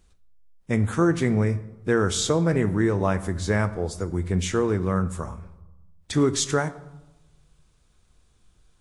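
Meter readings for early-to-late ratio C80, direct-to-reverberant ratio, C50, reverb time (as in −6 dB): 17.5 dB, 11.5 dB, 15.5 dB, 1.0 s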